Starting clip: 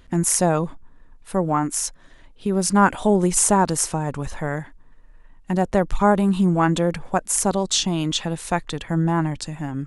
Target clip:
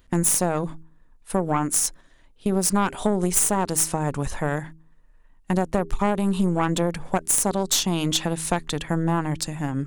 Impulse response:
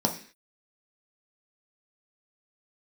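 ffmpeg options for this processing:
-af "aeval=exprs='0.841*(cos(1*acos(clip(val(0)/0.841,-1,1)))-cos(1*PI/2))+0.237*(cos(4*acos(clip(val(0)/0.841,-1,1)))-cos(4*PI/2))+0.0668*(cos(5*acos(clip(val(0)/0.841,-1,1)))-cos(5*PI/2))':c=same,highshelf=f=10k:g=11.5,agate=range=-8dB:threshold=-34dB:ratio=16:detection=peak,acompressor=threshold=-15dB:ratio=5,bandreject=f=80.05:t=h:w=4,bandreject=f=160.1:t=h:w=4,bandreject=f=240.15:t=h:w=4,bandreject=f=320.2:t=h:w=4,bandreject=f=400.25:t=h:w=4,volume=-2dB"

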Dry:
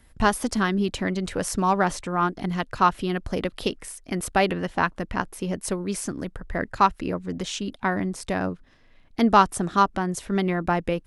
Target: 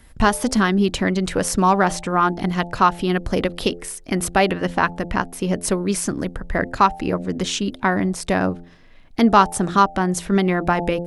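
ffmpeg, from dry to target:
-filter_complex "[0:a]bandreject=f=86.57:t=h:w=4,bandreject=f=173.14:t=h:w=4,bandreject=f=259.71:t=h:w=4,bandreject=f=346.28:t=h:w=4,bandreject=f=432.85:t=h:w=4,bandreject=f=519.42:t=h:w=4,bandreject=f=605.99:t=h:w=4,bandreject=f=692.56:t=h:w=4,bandreject=f=779.13:t=h:w=4,bandreject=f=865.7:t=h:w=4,asplit=2[a][b];[b]alimiter=limit=-15dB:level=0:latency=1:release=307,volume=2dB[c];[a][c]amix=inputs=2:normalize=0"

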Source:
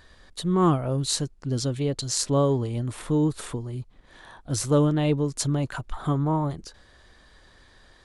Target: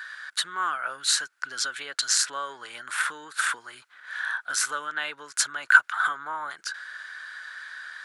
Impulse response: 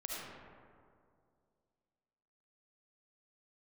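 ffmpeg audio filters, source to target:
-af "acompressor=threshold=-28dB:ratio=5,highpass=f=1.5k:t=q:w=8.5,volume=8dB"

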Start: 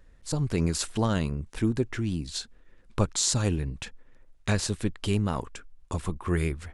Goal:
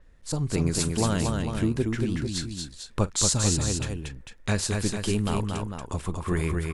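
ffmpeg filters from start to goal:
-af "aecho=1:1:43|233|449:0.106|0.631|0.398,adynamicequalizer=threshold=0.00794:dfrequency=7200:dqfactor=0.7:tfrequency=7200:tqfactor=0.7:attack=5:release=100:ratio=0.375:range=2.5:mode=boostabove:tftype=highshelf"

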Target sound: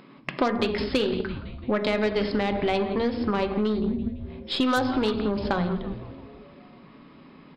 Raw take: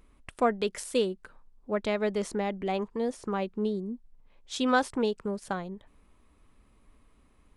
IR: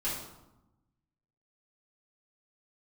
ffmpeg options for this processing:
-filter_complex "[0:a]asplit=2[a][b];[1:a]atrim=start_sample=2205,afade=t=out:st=0.27:d=0.01,atrim=end_sample=12348,lowshelf=f=400:g=11[c];[b][c]afir=irnorm=-1:irlink=0,volume=-12.5dB[d];[a][d]amix=inputs=2:normalize=0,afftfilt=real='re*between(b*sr/4096,120,5300)':imag='im*between(b*sr/4096,120,5300)':win_size=4096:overlap=0.75,asplit=2[e][f];[f]acompressor=threshold=-35dB:ratio=10,volume=1dB[g];[e][g]amix=inputs=2:normalize=0,asplit=7[h][i][j][k][l][m][n];[i]adelay=168,afreqshift=-150,volume=-17dB[o];[j]adelay=336,afreqshift=-300,volume=-21.4dB[p];[k]adelay=504,afreqshift=-450,volume=-25.9dB[q];[l]adelay=672,afreqshift=-600,volume=-30.3dB[r];[m]adelay=840,afreqshift=-750,volume=-34.7dB[s];[n]adelay=1008,afreqshift=-900,volume=-39.2dB[t];[h][o][p][q][r][s][t]amix=inputs=7:normalize=0,aeval=exprs='0.398*(cos(1*acos(clip(val(0)/0.398,-1,1)))-cos(1*PI/2))+0.0251*(cos(6*acos(clip(val(0)/0.398,-1,1)))-cos(6*PI/2))+0.0282*(cos(8*acos(clip(val(0)/0.398,-1,1)))-cos(8*PI/2))':c=same,acrossover=split=1100|3100[u][v][w];[u]acompressor=threshold=-31dB:ratio=4[x];[v]acompressor=threshold=-39dB:ratio=4[y];[w]acompressor=threshold=-42dB:ratio=4[z];[x][y][z]amix=inputs=3:normalize=0,volume=7.5dB"

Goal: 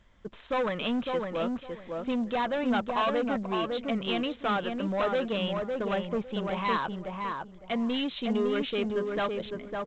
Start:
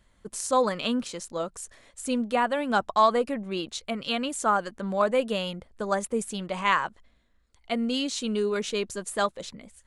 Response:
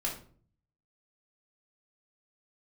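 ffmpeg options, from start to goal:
-filter_complex "[0:a]aresample=8000,asoftclip=type=tanh:threshold=-26dB,aresample=44100,asplit=2[a][b];[b]adelay=557,lowpass=f=1.4k:p=1,volume=-3dB,asplit=2[c][d];[d]adelay=557,lowpass=f=1.4k:p=1,volume=0.22,asplit=2[e][f];[f]adelay=557,lowpass=f=1.4k:p=1,volume=0.22[g];[a][c][e][g]amix=inputs=4:normalize=0,volume=1.5dB" -ar 16000 -c:a pcm_mulaw

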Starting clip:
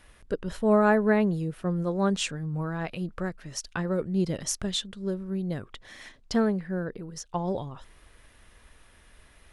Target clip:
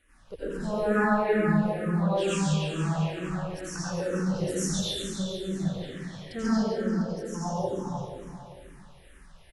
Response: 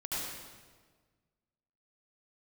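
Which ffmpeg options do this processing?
-filter_complex "[0:a]asettb=1/sr,asplit=3[a][b][c];[a]atrim=end=6.484[d];[b]atrim=start=6.48:end=6.91,asetpts=PTS-STARTPTS,afade=t=in:d=0.004:c=qsin,afade=t=out:st=0.426:d=0.004:c=qsin,lowpass=1.2k[e];[c]atrim=start=6.906[f];[d][e]acrossfade=d=0.004:c1=hsin:c2=qsin[g];[g][f]acrossfade=d=0.004:c1=qsin:c2=hsin,aecho=1:1:140|301|486.2|699.1|943.9:0.631|0.398|0.251|0.158|0.1[h];[1:a]atrim=start_sample=2205,asetrate=38808,aresample=44100[i];[h][i]afir=irnorm=-1:irlink=0,asplit=2[j][k];[k]afreqshift=-2.2[l];[j][l]amix=inputs=2:normalize=1,volume=-4dB"

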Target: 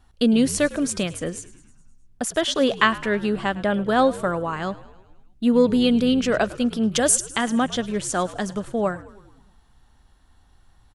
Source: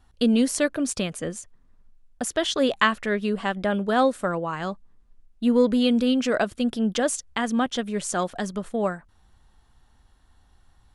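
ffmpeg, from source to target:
-filter_complex "[0:a]asettb=1/sr,asplit=3[a][b][c];[a]atrim=end=6.924[d];[b]atrim=start=6.92:end=7.44,asetpts=PTS-STARTPTS,afade=t=in:d=0.004:c=qsin,afade=t=out:st=0.516:d=0.004:c=qsin,aemphasis=mode=production:type=50kf[e];[c]atrim=start=7.436[f];[d][e]acrossfade=d=0.004:c1=hsin:c2=qsin[g];[g][f]acrossfade=d=0.004:c1=qsin:c2=hsin,asplit=2[h][i];[i]asplit=6[j][k][l][m][n][o];[j]adelay=105,afreqshift=-67,volume=-18.5dB[p];[k]adelay=210,afreqshift=-134,volume=-22.8dB[q];[l]adelay=315,afreqshift=-201,volume=-27.1dB[r];[m]adelay=420,afreqshift=-268,volume=-31.4dB[s];[n]adelay=525,afreqshift=-335,volume=-35.7dB[t];[o]adelay=630,afreqshift=-402,volume=-40dB[u];[p][q][r][s][t][u]amix=inputs=6:normalize=0[v];[h][v]amix=inputs=2:normalize=0,volume=2dB"

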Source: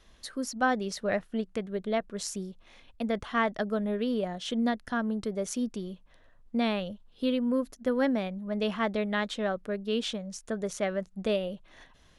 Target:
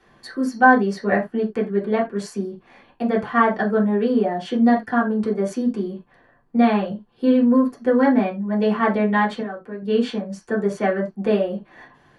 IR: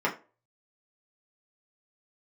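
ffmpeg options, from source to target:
-filter_complex "[0:a]asettb=1/sr,asplit=3[a][b][c];[a]atrim=end=9.404[d];[b]atrim=start=9.4:end=9.82,asetpts=PTS-STARTPTS,afade=t=in:d=0.004:c=qsin,afade=t=out:st=0.416:d=0.004:c=qsin,acompressor=threshold=-43dB:ratio=3[e];[c]atrim=start=9.816[f];[d][e]acrossfade=d=0.004:c1=hsin:c2=qsin[g];[g][f]acrossfade=d=0.004:c1=qsin:c2=hsin[h];[1:a]atrim=start_sample=2205,atrim=end_sample=3528,asetrate=37044,aresample=44100[i];[h][i]afir=irnorm=-1:irlink=0,volume=-3dB"

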